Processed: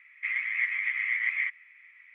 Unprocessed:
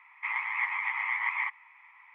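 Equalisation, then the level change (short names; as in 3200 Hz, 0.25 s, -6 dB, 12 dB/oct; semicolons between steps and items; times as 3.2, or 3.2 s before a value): steep high-pass 1600 Hz 48 dB/oct; high shelf 2200 Hz -11 dB; +8.0 dB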